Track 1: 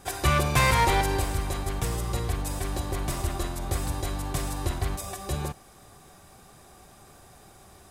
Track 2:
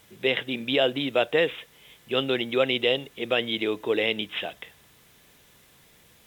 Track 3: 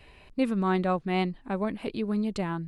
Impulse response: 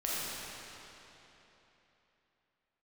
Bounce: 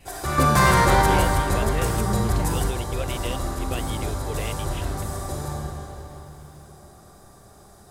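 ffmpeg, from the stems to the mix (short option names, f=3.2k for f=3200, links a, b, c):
-filter_complex "[0:a]adynamicequalizer=threshold=0.01:dfrequency=1500:dqfactor=1.1:tfrequency=1500:tqfactor=1.1:attack=5:release=100:ratio=0.375:range=3:mode=boostabove:tftype=bell,asoftclip=type=tanh:threshold=-15dB,equalizer=f=2.6k:t=o:w=0.77:g=-11.5,volume=2dB,asplit=2[a][b];[b]volume=-6.5dB[c];[1:a]adelay=400,volume=-10.5dB[d];[2:a]volume=-1.5dB,asplit=2[e][f];[f]apad=whole_len=348682[g];[a][g]sidechaingate=range=-16dB:threshold=-42dB:ratio=16:detection=peak[h];[3:a]atrim=start_sample=2205[i];[c][i]afir=irnorm=-1:irlink=0[j];[h][d][e][j]amix=inputs=4:normalize=0"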